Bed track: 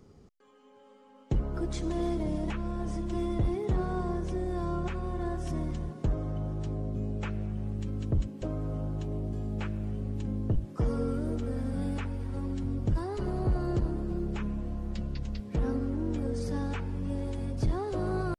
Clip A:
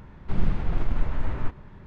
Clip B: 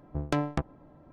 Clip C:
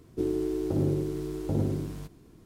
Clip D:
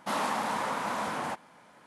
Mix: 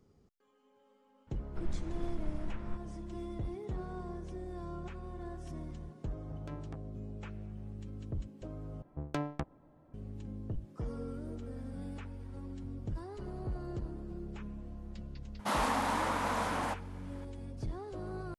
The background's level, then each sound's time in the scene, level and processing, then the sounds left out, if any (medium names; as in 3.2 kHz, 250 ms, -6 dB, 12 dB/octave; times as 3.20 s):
bed track -10.5 dB
1.27 s: add A -14.5 dB
6.15 s: add B -16.5 dB + peak limiter -17.5 dBFS
8.82 s: replace with B -7.5 dB
15.39 s: add D -1.5 dB + resampled via 32 kHz
not used: C